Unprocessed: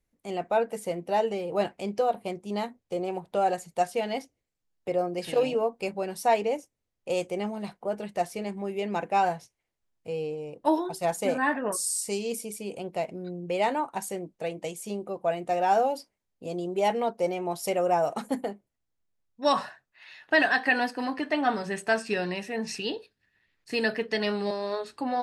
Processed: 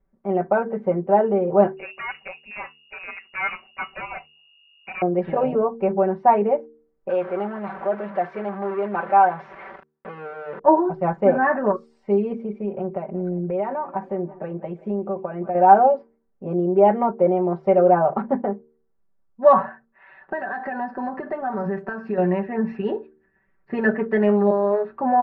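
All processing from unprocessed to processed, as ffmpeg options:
-filter_complex "[0:a]asettb=1/sr,asplit=3[s0][s1][s2];[s0]atrim=end=1.774[s3];[s1]atrim=start=1.77:end=5.02,asetpts=PTS-STARTPTS,afade=t=in:d=0.004:c=qsin,afade=t=out:st=3.246:d=0.004:c=qsin,aeval=exprs='val(0)+0.00708*(sin(2*PI*50*n/s)+sin(2*PI*2*50*n/s)/2+sin(2*PI*3*50*n/s)/3+sin(2*PI*4*50*n/s)/4+sin(2*PI*5*50*n/s)/5)':c=same,aeval=exprs='clip(val(0),-1,0.0473)':c=same,lowpass=f=2500:t=q:w=0.5098,lowpass=f=2500:t=q:w=0.6013,lowpass=f=2500:t=q:w=0.9,lowpass=f=2500:t=q:w=2.563,afreqshift=-2900[s4];[s2]atrim=start=5.016[s5];[s3][s4]acrossfade=d=0.004:c1=hsin:c2=qsin[s6];[s6][s5]acrossfade=d=0.004:c1=qsin:c2=hsin,asettb=1/sr,asplit=3[s7][s8][s9];[s7]atrim=end=7.094[s10];[s8]atrim=start=7.09:end=10.59,asetpts=PTS-STARTPTS,afade=t=in:d=0.004:c=qsin,afade=t=out:st=3.496:d=0.004:c=qsin,aeval=exprs='val(0)+0.5*0.0282*sgn(val(0))':c=same,highpass=f=1000:p=1,highshelf=f=4700:g=5.5[s11];[s9]atrim=start=10.586[s12];[s10][s11]acrossfade=d=0.004:c1=hsin:c2=qsin[s13];[s13][s12]acrossfade=d=0.004:c1=qsin:c2=hsin,asettb=1/sr,asplit=3[s14][s15][s16];[s14]atrim=end=12.464[s17];[s15]atrim=start=12.46:end=15.55,asetpts=PTS-STARTPTS,afade=t=in:d=0.004:c=qsin,afade=t=out:st=3.086:d=0.004:c=qsin,aecho=1:1:173|346|519|692:0.0708|0.0418|0.0246|0.0145,atrim=end_sample=136269,acompressor=threshold=0.0224:ratio=3:attack=3.2:release=140:knee=1:detection=peak[s18];[s16]atrim=start=15.546[s19];[s17][s18]acrossfade=d=0.004:c1=hsin:c2=qsin[s20];[s20][s19]acrossfade=d=0.004:c1=qsin:c2=hsin,asettb=1/sr,asplit=3[s21][s22][s23];[s21]atrim=end=20.214[s24];[s22]atrim=start=20.21:end=22.18,asetpts=PTS-STARTPTS,afade=t=in:d=0.004:c=qsin,afade=t=out:st=1.966:d=0.004:c=qsin,highshelf=f=3900:t=q:w=1.5:g=8.5,acompressor=threshold=0.0282:ratio=8:attack=3.2:release=140:knee=1:detection=peak[s25];[s23]atrim=start=22.176[s26];[s24][s25]acrossfade=d=0.004:c1=hsin:c2=qsin[s27];[s27][s26]acrossfade=d=0.004:c1=qsin:c2=hsin,lowpass=f=1500:w=0.5412,lowpass=f=1500:w=1.3066,aecho=1:1:5.2:0.9,bandreject=f=76.43:t=h:w=4,bandreject=f=152.86:t=h:w=4,bandreject=f=229.29:t=h:w=4,bandreject=f=305.72:t=h:w=4,bandreject=f=382.15:t=h:w=4,bandreject=f=458.58:t=h:w=4,volume=2.24"

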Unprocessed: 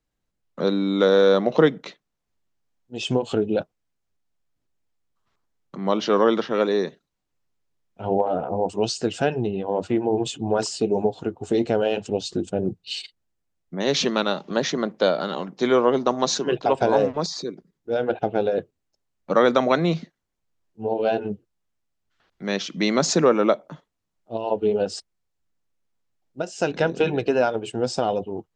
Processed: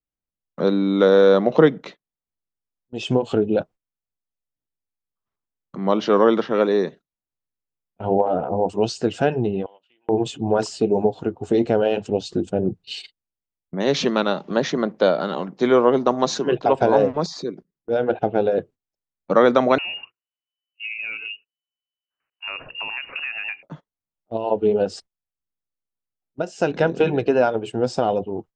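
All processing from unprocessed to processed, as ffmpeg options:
-filter_complex "[0:a]asettb=1/sr,asplit=3[s0][s1][s2];[s0]atrim=end=9.664[s3];[s1]atrim=start=9.66:end=10.09,asetpts=PTS-STARTPTS,afade=t=in:d=0.004:c=qsin,afade=t=out:st=0.426:d=0.004:c=qsin,aderivative,acompressor=threshold=0.00355:ratio=4:attack=3.2:release=140:knee=1:detection=peak,lowpass=f=3000:t=q:w=6.8[s4];[s2]atrim=start=10.086[s5];[s3][s4]acrossfade=d=0.004:c1=hsin:c2=qsin[s6];[s6][s5]acrossfade=d=0.004:c1=qsin:c2=hsin,asettb=1/sr,asplit=3[s7][s8][s9];[s7]atrim=end=19.784[s10];[s8]atrim=start=19.78:end=23.63,asetpts=PTS-STARTPTS,afade=t=in:d=0.004:c=qsin,afade=t=out:st=3.846:d=0.004:c=qsin,lowpass=f=2600:t=q:w=0.5098,lowpass=f=2600:t=q:w=0.6013,lowpass=f=2600:t=q:w=0.9,lowpass=f=2600:t=q:w=2.563,afreqshift=-3000,bandreject=f=60:t=h:w=6,bandreject=f=120:t=h:w=6,bandreject=f=180:t=h:w=6,bandreject=f=240:t=h:w=6,bandreject=f=300:t=h:w=6,bandreject=f=360:t=h:w=6,bandreject=f=420:t=h:w=6,bandreject=f=480:t=h:w=6,acompressor=threshold=0.0501:ratio=6:attack=3.2:release=140:knee=1:detection=peak[s11];[s9]atrim=start=23.626[s12];[s10][s11]acrossfade=d=0.004:c1=hsin:c2=qsin[s13];[s13][s12]acrossfade=d=0.004:c1=qsin:c2=hsin,agate=range=0.141:threshold=0.00794:ratio=16:detection=peak,highshelf=f=3100:g=-8.5,volume=1.41"

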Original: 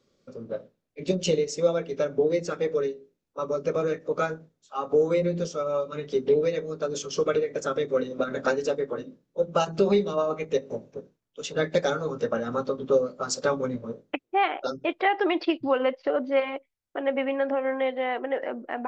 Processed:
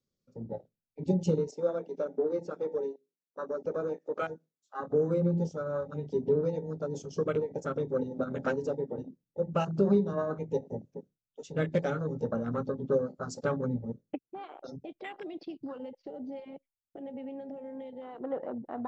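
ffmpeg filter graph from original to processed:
-filter_complex "[0:a]asettb=1/sr,asplit=3[s0][s1][s2];[s0]atrim=end=1.514[s3];[s1]atrim=start=1.51:end=4.8,asetpts=PTS-STARTPTS,afade=t=in:d=0.004:c=qsin,afade=t=out:st=3.286:d=0.004:c=qsin,highpass=310,acrossover=split=5400[s4][s5];[s5]acompressor=threshold=0.00112:ratio=4:attack=1:release=60[s6];[s4][s6]amix=inputs=2:normalize=0[s7];[s2]atrim=start=4.796[s8];[s3][s7]acrossfade=d=0.004:c1=hsin:c2=qsin[s9];[s9][s8]acrossfade=d=0.004:c1=qsin:c2=hsin,asettb=1/sr,asplit=3[s10][s11][s12];[s10]atrim=end=14.234[s13];[s11]atrim=start=14.23:end=18.21,asetpts=PTS-STARTPTS,afade=t=in:d=0.004:c=qsin,afade=t=out:st=3.976:d=0.004:c=qsin,highshelf=f=5900:g=5,acrossover=split=140|3000[s14][s15][s16];[s15]acompressor=threshold=0.0178:ratio=4:attack=3.2:release=140:knee=2.83:detection=peak[s17];[s14][s17][s16]amix=inputs=3:normalize=0[s18];[s12]atrim=start=18.206[s19];[s13][s18]acrossfade=d=0.004:c1=hsin:c2=qsin[s20];[s20][s19]acrossfade=d=0.004:c1=qsin:c2=hsin,afwtdn=0.0224,bass=f=250:g=12,treble=f=4000:g=10,volume=0.447"

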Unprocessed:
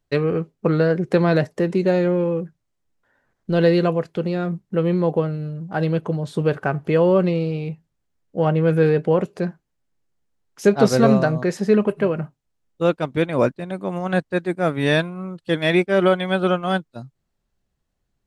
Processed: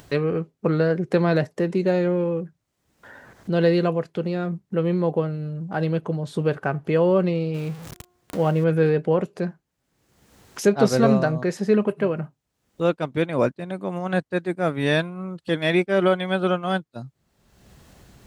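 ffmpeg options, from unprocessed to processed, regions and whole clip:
-filter_complex "[0:a]asettb=1/sr,asplit=3[s0][s1][s2];[s0]atrim=end=7.544[s3];[s1]atrim=start=7.54:end=8.64,asetpts=PTS-STARTPTS,afade=t=in:d=0.004:c=qsin,afade=t=out:st=1.096:d=0.004:c=qsin,aeval=exprs='val(0)+0.5*0.0211*sgn(val(0))':c=same,bandreject=f=357.2:t=h:w=4,bandreject=f=714.4:t=h:w=4,bandreject=f=1071.6:t=h:w=4,bandreject=f=1428.8:t=h:w=4[s4];[s2]atrim=start=8.636[s5];[s3][s4]acrossfade=d=0.004:c1=hsin:c2=qsin[s6];[s6][s5]acrossfade=d=0.004:c1=qsin:c2=hsin,highpass=59,acompressor=mode=upward:threshold=0.0708:ratio=2.5,volume=0.75"

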